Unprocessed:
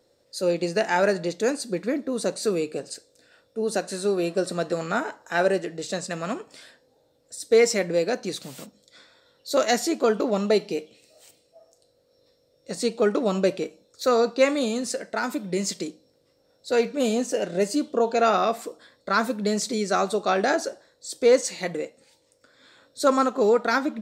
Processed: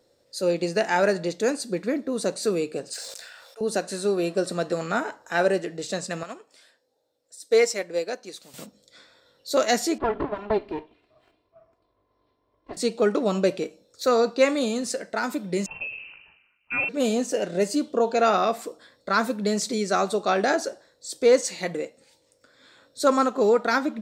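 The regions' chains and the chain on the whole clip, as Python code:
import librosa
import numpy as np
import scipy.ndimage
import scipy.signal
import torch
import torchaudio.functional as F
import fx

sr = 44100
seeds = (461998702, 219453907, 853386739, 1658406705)

y = fx.chain(x, sr, fx.highpass(hz=740.0, slope=24),
    fx.leveller(passes=1),
    fx.sustainer(db_per_s=31.0), at=(2.93, 3.61))
y = fx.chain(y, sr, fx.bass_treble(bass_db=-11, treble_db=2),
    fx.upward_expand(threshold_db=-33.0, expansion=1.5), at=(6.23, 8.54))
y = fx.chain(y, sr, fx.lower_of_two(delay_ms=2.9),
    fx.highpass(hz=56.0, slope=6),
    fx.air_absorb(metres=440.0), at=(9.98, 12.77))
y = fx.chain(y, sr, fx.peak_eq(hz=570.0, db=-11.5, octaves=0.81),
    fx.freq_invert(carrier_hz=2900),
    fx.sustainer(db_per_s=55.0), at=(15.66, 16.89))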